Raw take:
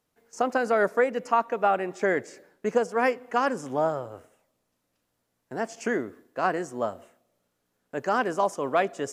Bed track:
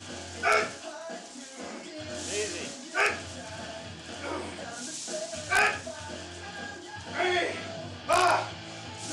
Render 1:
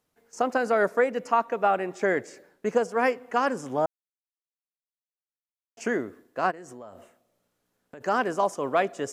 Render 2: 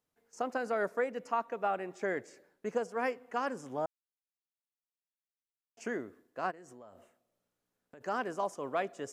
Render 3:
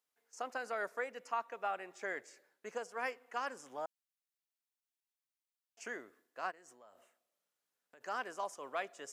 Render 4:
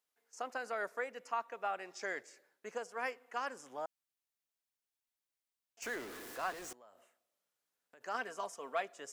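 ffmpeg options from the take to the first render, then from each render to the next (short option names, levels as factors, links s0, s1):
-filter_complex "[0:a]asplit=3[s0][s1][s2];[s0]afade=t=out:st=6.5:d=0.02[s3];[s1]acompressor=threshold=0.0112:ratio=10:attack=3.2:release=140:knee=1:detection=peak,afade=t=in:st=6.5:d=0.02,afade=t=out:st=8:d=0.02[s4];[s2]afade=t=in:st=8:d=0.02[s5];[s3][s4][s5]amix=inputs=3:normalize=0,asplit=3[s6][s7][s8];[s6]atrim=end=3.86,asetpts=PTS-STARTPTS,afade=t=out:st=3.856:d=0.004:c=hsin[s9];[s7]atrim=start=3.86:end=5.77,asetpts=PTS-STARTPTS,volume=0[s10];[s8]atrim=start=5.77,asetpts=PTS-STARTPTS,afade=t=in:d=0.004:c=hsin[s11];[s9][s10][s11]concat=n=3:v=0:a=1"
-af "volume=0.335"
-af "highpass=f=1300:p=1"
-filter_complex "[0:a]asettb=1/sr,asplit=3[s0][s1][s2];[s0]atrim=end=1.794[s3];[s1]atrim=start=1.79:end=2.23,asetpts=PTS-STARTPTS,afade=t=in:d=0.004:c=qsin,afade=t=out:st=0.436:d=0.004:c=qsin,equalizer=f=5200:w=1.8:g=12.5[s4];[s2]atrim=start=2.226[s5];[s3][s4]acrossfade=d=0.004:c1=hsin:c2=qsin[s6];[s6][s5]acrossfade=d=0.004:c1=qsin:c2=hsin,asettb=1/sr,asplit=3[s7][s8][s9];[s7]atrim=end=5.824[s10];[s8]atrim=start=5.82:end=6.73,asetpts=PTS-STARTPTS,afade=t=in:d=0.004:c=qsin,afade=t=out:st=0.906:d=0.004:c=qsin,aeval=exprs='val(0)+0.5*0.0075*sgn(val(0))':c=same[s11];[s9]atrim=start=6.726[s12];[s10][s11]acrossfade=d=0.004:c1=hsin:c2=qsin[s13];[s13][s12]acrossfade=d=0.004:c1=qsin:c2=hsin,asettb=1/sr,asplit=3[s14][s15][s16];[s14]atrim=end=8.144[s17];[s15]atrim=start=8.14:end=8.81,asetpts=PTS-STARTPTS,afade=t=in:d=0.004:c=qsin,afade=t=out:st=0.666:d=0.004:c=qsin,aecho=1:1:4.4:0.59,atrim=end_sample=29547[s18];[s16]atrim=start=8.806[s19];[s17][s18]acrossfade=d=0.004:c1=hsin:c2=qsin[s20];[s20][s19]acrossfade=d=0.004:c1=qsin:c2=hsin"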